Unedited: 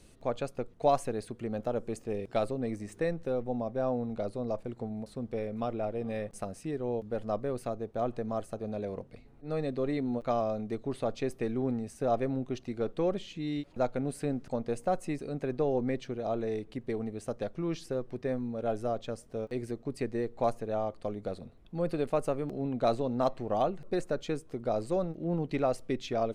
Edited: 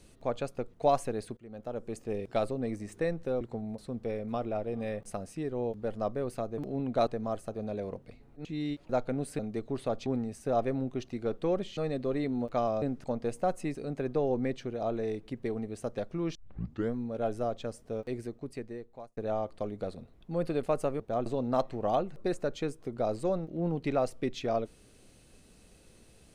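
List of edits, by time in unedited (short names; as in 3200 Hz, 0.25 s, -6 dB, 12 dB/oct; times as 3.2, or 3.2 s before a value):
1.37–2.1 fade in, from -19.5 dB
3.41–4.69 cut
7.86–8.12 swap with 22.44–22.93
9.5–10.55 swap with 13.32–14.26
11.22–11.61 cut
17.79 tape start 0.59 s
19.44–20.61 fade out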